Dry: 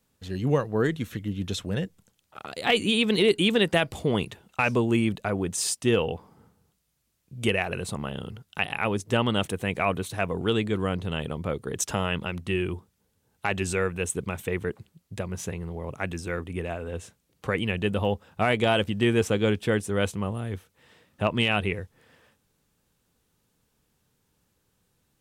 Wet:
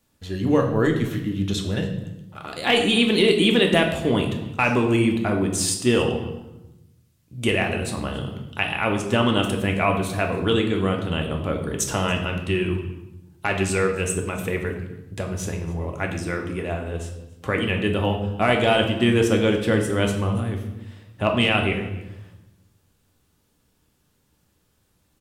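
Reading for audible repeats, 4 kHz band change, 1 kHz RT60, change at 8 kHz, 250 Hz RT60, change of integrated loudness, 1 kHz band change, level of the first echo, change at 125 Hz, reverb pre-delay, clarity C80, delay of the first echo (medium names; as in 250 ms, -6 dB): 1, +4.5 dB, 0.85 s, +4.0 dB, 1.3 s, +4.5 dB, +4.5 dB, -22.0 dB, +4.5 dB, 3 ms, 9.5 dB, 282 ms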